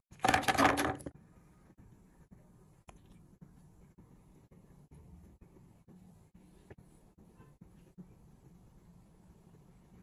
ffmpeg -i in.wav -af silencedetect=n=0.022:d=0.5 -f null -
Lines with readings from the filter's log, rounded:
silence_start: 1.07
silence_end: 10.02 | silence_duration: 8.95